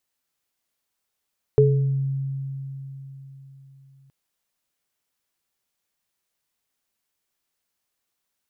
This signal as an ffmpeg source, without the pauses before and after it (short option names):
-f lavfi -i "aevalsrc='0.178*pow(10,-3*t/4.1)*sin(2*PI*136*t)+0.316*pow(10,-3*t/0.52)*sin(2*PI*428*t)':d=2.52:s=44100"